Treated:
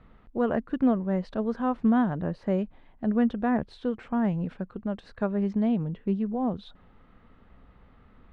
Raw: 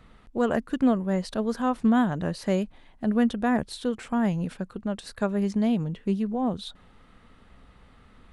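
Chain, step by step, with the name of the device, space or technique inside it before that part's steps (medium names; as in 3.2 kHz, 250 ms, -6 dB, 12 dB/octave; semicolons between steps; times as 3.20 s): phone in a pocket (low-pass 3.7 kHz 12 dB/octave; treble shelf 2.5 kHz -10 dB); 2.18–2.59 s: peaking EQ 3.9 kHz -4.5 dB 2.3 oct; trim -1 dB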